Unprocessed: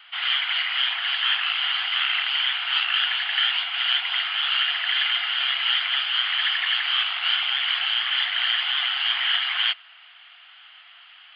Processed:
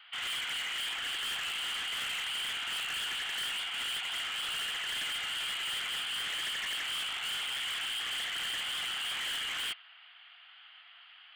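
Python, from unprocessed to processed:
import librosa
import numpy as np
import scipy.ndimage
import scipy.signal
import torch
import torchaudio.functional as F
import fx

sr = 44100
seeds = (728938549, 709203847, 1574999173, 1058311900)

y = np.clip(10.0 ** (27.0 / 20.0) * x, -1.0, 1.0) / 10.0 ** (27.0 / 20.0)
y = y * 10.0 ** (-6.5 / 20.0)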